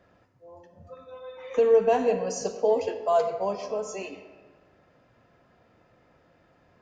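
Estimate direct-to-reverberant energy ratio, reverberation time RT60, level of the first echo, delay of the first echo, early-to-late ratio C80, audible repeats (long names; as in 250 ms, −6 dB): 9.0 dB, 1.6 s, no echo audible, no echo audible, 11.0 dB, no echo audible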